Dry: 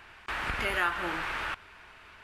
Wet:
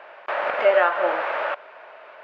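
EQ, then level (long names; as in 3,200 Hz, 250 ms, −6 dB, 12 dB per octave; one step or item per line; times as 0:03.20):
high-pass with resonance 580 Hz, resonance Q 7
high-frequency loss of the air 77 metres
head-to-tape spacing loss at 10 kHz 26 dB
+9.0 dB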